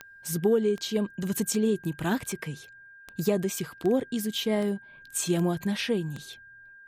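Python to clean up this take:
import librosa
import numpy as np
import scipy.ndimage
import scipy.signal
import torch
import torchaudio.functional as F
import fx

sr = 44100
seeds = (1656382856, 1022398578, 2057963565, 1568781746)

y = fx.fix_declick_ar(x, sr, threshold=10.0)
y = fx.notch(y, sr, hz=1600.0, q=30.0)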